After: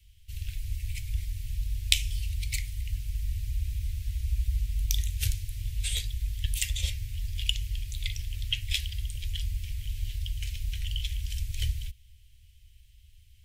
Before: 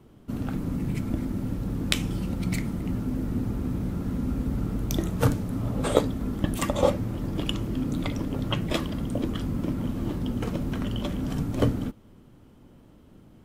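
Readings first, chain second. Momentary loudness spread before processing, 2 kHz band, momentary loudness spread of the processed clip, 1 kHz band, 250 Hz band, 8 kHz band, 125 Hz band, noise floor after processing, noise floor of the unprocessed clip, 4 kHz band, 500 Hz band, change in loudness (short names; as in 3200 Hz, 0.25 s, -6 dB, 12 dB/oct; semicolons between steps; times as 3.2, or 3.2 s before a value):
5 LU, -1.5 dB, 7 LU, under -35 dB, -34.5 dB, +4.5 dB, -4.5 dB, -56 dBFS, -53 dBFS, +4.0 dB, -37.0 dB, -4.0 dB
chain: inverse Chebyshev band-stop 150–1300 Hz, stop band 40 dB; in parallel at -11.5 dB: soft clip -16 dBFS, distortion -19 dB; on the sum: gain +2.5 dB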